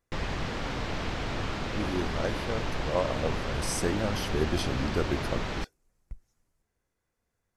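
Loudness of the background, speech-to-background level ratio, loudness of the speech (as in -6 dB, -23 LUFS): -33.5 LUFS, 1.0 dB, -32.5 LUFS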